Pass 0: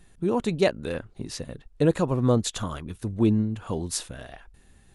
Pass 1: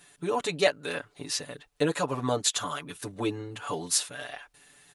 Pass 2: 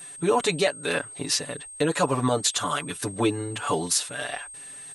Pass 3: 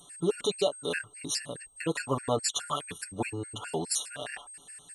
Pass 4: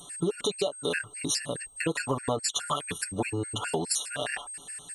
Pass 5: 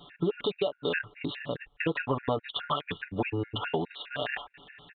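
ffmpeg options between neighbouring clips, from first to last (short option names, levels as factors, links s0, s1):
-filter_complex "[0:a]highpass=f=1100:p=1,aecho=1:1:6.9:0.97,asplit=2[s0][s1];[s1]acompressor=threshold=0.0158:ratio=6,volume=0.891[s2];[s0][s2]amix=inputs=2:normalize=0"
-af "alimiter=limit=0.112:level=0:latency=1:release=274,aeval=exprs='val(0)+0.00447*sin(2*PI*8400*n/s)':c=same,volume=2.37"
-af "afftfilt=real='re*gt(sin(2*PI*4.8*pts/sr)*(1-2*mod(floor(b*sr/1024/1400),2)),0)':imag='im*gt(sin(2*PI*4.8*pts/sr)*(1-2*mod(floor(b*sr/1024/1400),2)),0)':win_size=1024:overlap=0.75,volume=0.708"
-af "acompressor=threshold=0.0251:ratio=6,volume=2.24"
-af "aresample=8000,aresample=44100"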